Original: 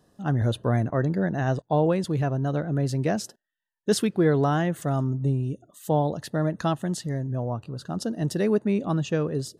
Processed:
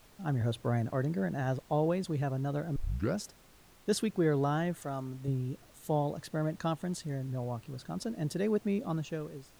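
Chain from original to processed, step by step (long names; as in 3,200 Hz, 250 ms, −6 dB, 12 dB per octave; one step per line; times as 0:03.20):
fade-out on the ending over 0.76 s
0:02.76: tape start 0.42 s
0:04.75–0:05.28: low-shelf EQ 210 Hz −11.5 dB
background noise pink −52 dBFS
level −7.5 dB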